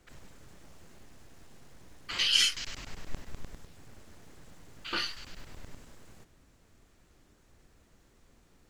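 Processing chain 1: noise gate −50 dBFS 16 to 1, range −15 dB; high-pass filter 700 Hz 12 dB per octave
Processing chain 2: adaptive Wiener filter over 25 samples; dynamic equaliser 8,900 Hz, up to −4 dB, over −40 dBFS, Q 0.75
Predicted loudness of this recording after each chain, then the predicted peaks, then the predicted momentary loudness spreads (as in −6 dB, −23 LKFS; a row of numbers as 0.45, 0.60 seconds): −28.5, −29.5 LKFS; −10.5, −11.5 dBFS; 22, 23 LU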